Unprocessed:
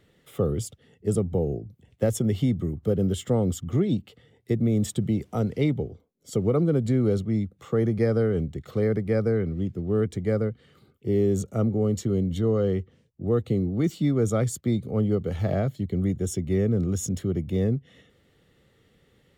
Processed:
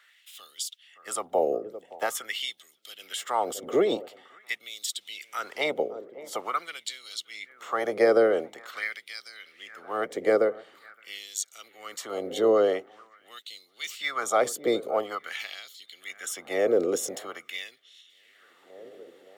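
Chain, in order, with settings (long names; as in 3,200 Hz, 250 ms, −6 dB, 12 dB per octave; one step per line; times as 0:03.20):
ceiling on every frequency bin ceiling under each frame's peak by 14 dB
delay with a low-pass on its return 569 ms, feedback 63%, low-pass 1,700 Hz, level −18.5 dB
auto-filter high-pass sine 0.46 Hz 460–3,900 Hz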